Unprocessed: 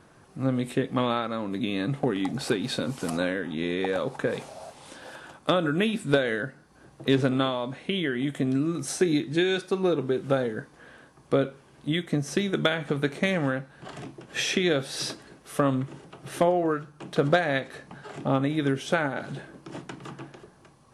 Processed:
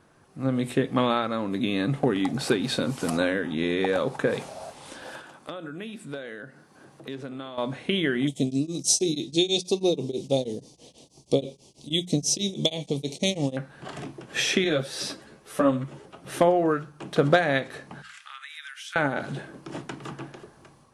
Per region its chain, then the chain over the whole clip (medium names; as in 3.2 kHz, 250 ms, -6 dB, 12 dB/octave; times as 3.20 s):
5.21–7.58 s: high-pass 130 Hz + compression 2:1, threshold -49 dBFS
8.27–13.57 s: Butterworth band-stop 1.5 kHz, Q 0.66 + peaking EQ 5.8 kHz +14.5 dB 1.7 oct + tremolo of two beating tones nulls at 6.2 Hz
14.64–16.29 s: peaking EQ 560 Hz +5 dB 0.2 oct + three-phase chorus
18.02–18.96 s: steep high-pass 1.4 kHz + compression 3:1, threshold -41 dBFS
whole clip: hum notches 60/120/180 Hz; level rider gain up to 7 dB; trim -4 dB